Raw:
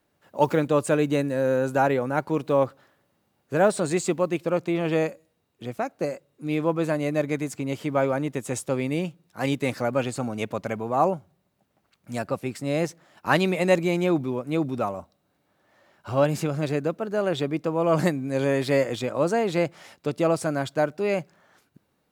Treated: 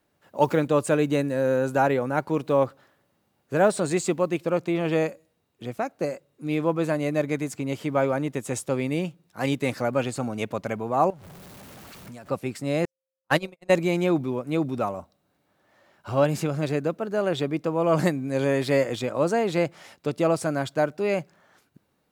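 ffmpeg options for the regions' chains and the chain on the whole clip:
-filter_complex "[0:a]asettb=1/sr,asplit=3[a][b][c];[a]atrim=end=11.104[d];[b]atrim=start=11.1:end=12.3,asetpts=PTS-STARTPTS,afade=t=in:d=0.004:c=qsin,afade=t=out:st=1.196:d=0.004:c=qsin,aeval=exprs='val(0)+0.5*0.0106*sgn(val(0))':c=same,acompressor=threshold=-39dB:ratio=6:attack=3.2:release=140:knee=1:detection=peak[e];[c]atrim=start=12.296[f];[d][e]acrossfade=d=0.004:c1=hsin:c2=qsin[g];[g][f]acrossfade=d=0.004:c1=qsin:c2=hsin,asettb=1/sr,asplit=3[h][i][j];[h]atrim=end=12.854[k];[i]atrim=start=12.85:end=13.7,asetpts=PTS-STARTPTS,afade=t=in:d=0.004:c=qsin,afade=t=out:st=0.846:d=0.004:c=qsin,highshelf=f=4.8k:g=4,aeval=exprs='val(0)+0.0282*sin(2*PI*530*n/s)':c=same,agate=range=-57dB:threshold=-20dB:ratio=16:release=100:detection=peak[l];[j]atrim=start=13.696[m];[k][l]acrossfade=d=0.004:c1=hsin:c2=qsin[n];[n][m]acrossfade=d=0.004:c1=qsin:c2=hsin"

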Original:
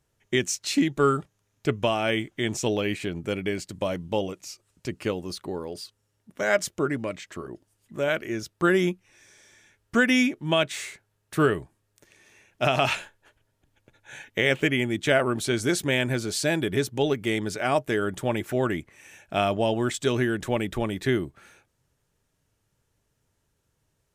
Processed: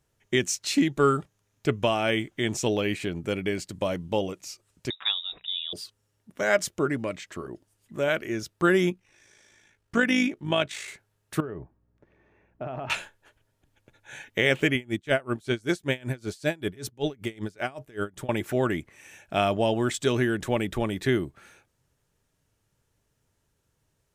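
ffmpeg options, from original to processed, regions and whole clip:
-filter_complex "[0:a]asettb=1/sr,asplit=3[a][b][c];[a]atrim=end=4.904[d];[b]atrim=start=4.9:end=5.73,asetpts=PTS-STARTPTS,afade=t=in:d=0.004:c=qsin,afade=t=out:st=0.826:d=0.004:c=qsin,lowpass=f=3.3k:t=q:w=0.5098,lowpass=f=3.3k:t=q:w=0.6013,lowpass=f=3.3k:t=q:w=0.9,lowpass=f=3.3k:t=q:w=2.563,afreqshift=-3900,bandreject=f=60:t=h:w=6,bandreject=f=120:t=h:w=6,bandreject=f=180:t=h:w=6[e];[c]atrim=start=5.726[f];[d][e]acrossfade=d=0.004:c1=hsin:c2=qsin[g];[g][f]acrossfade=d=0.004:c1=qsin:c2=hsin,asettb=1/sr,asplit=3[h][i][j];[h]atrim=end=8.904[k];[i]atrim=start=8.9:end=10.88,asetpts=PTS-STARTPTS,afade=t=in:d=0.004:c=qsin,afade=t=out:st=1.976:d=0.004:c=qsin,highshelf=f=11k:g=-8.5,tremolo=f=53:d=0.519[l];[j]atrim=start=10.876[m];[k][l]acrossfade=d=0.004:c1=hsin:c2=qsin[n];[n][m]acrossfade=d=0.004:c1=qsin:c2=hsin,asettb=1/sr,asplit=3[o][p][q];[o]atrim=end=11.404[r];[p]atrim=start=11.4:end=12.9,asetpts=PTS-STARTPTS,afade=t=in:d=0.004:c=qsin,afade=t=out:st=1.496:d=0.004:c=qsin,lowpass=1.1k,acompressor=threshold=-30dB:ratio=16:attack=3.2:release=140:knee=1:detection=peak,aeval=exprs='val(0)+0.000355*(sin(2*PI*60*n/s)+sin(2*PI*2*60*n/s)/2+sin(2*PI*3*60*n/s)/3+sin(2*PI*4*60*n/s)/4+sin(2*PI*5*60*n/s)/5)':c=same[s];[q]atrim=start=12.896[t];[r][s]acrossfade=d=0.004:c1=hsin:c2=qsin[u];[u][t]acrossfade=d=0.004:c1=qsin:c2=hsin,asettb=1/sr,asplit=3[v][w][x];[v]atrim=end=14.754[y];[w]atrim=start=14.75:end=18.29,asetpts=PTS-STARTPTS,afade=t=in:d=0.004:c=qsin,afade=t=out:st=3.536:d=0.004:c=qsin,lowshelf=f=61:g=10.5,aeval=exprs='val(0)*pow(10,-27*(0.5-0.5*cos(2*PI*5.2*n/s))/20)':c=same[z];[x]atrim=start=18.286[aa];[y][z]acrossfade=d=0.004:c1=hsin:c2=qsin[ab];[ab][aa]acrossfade=d=0.004:c1=qsin:c2=hsin"

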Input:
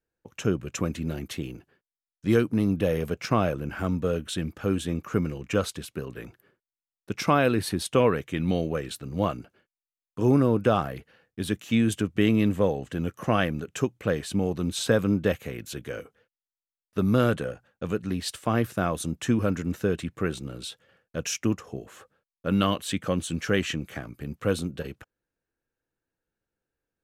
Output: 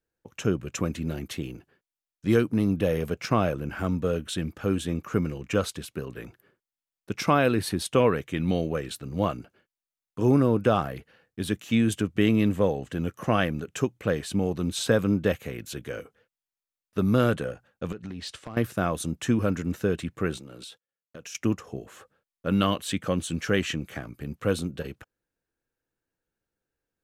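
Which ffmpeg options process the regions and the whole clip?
-filter_complex "[0:a]asettb=1/sr,asplit=3[a][b][c];[a]atrim=end=17.924[d];[b]atrim=start=17.92:end=18.57,asetpts=PTS-STARTPTS,afade=t=in:d=0.004:c=qsin,afade=t=out:st=0.646:d=0.004:c=qsin,lowpass=6.3k,acompressor=threshold=-32dB:ratio=10:attack=3.2:release=140:knee=1:detection=peak,asoftclip=type=hard:threshold=-28dB[e];[c]atrim=start=18.566[f];[d][e]acrossfade=d=0.004:c1=hsin:c2=qsin[g];[g][f]acrossfade=d=0.004:c1=qsin:c2=hsin,asettb=1/sr,asplit=3[h][i][j];[h]atrim=end=20.374[k];[i]atrim=start=20.37:end=21.35,asetpts=PTS-STARTPTS,afade=t=in:d=0.004:c=qsin,afade=t=out:st=0.976:d=0.004:c=qsin,agate=range=-35dB:threshold=-56dB:ratio=16:release=100:detection=peak,highpass=f=210:p=1,acompressor=threshold=-39dB:ratio=5:attack=3.2:release=140:knee=1:detection=peak[l];[j]atrim=start=21.346[m];[k][l]acrossfade=d=0.004:c1=hsin:c2=qsin[n];[n][m]acrossfade=d=0.004:c1=qsin:c2=hsin"

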